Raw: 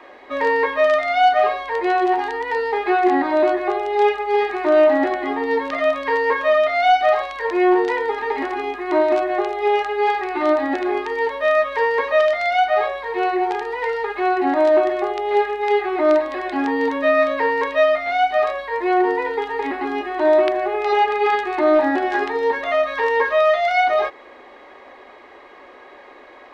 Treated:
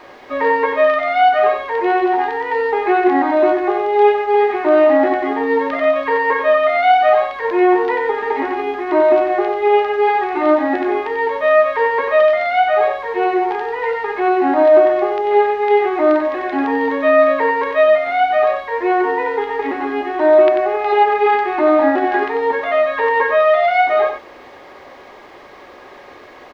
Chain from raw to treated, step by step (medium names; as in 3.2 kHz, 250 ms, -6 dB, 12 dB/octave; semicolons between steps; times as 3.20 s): high-pass 45 Hz; in parallel at -5 dB: word length cut 6-bit, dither triangular; on the sum: distance through air 260 m; delay 92 ms -7 dB